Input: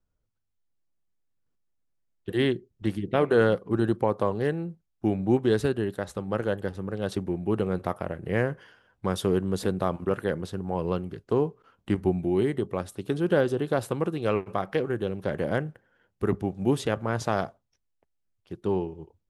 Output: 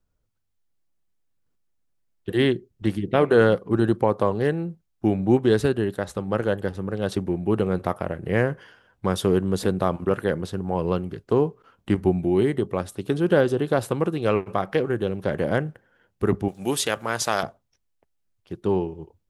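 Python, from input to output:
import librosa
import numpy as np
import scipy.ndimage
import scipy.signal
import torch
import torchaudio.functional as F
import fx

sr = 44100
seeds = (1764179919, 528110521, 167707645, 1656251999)

y = fx.tilt_eq(x, sr, slope=3.5, at=(16.48, 17.43))
y = y * librosa.db_to_amplitude(4.0)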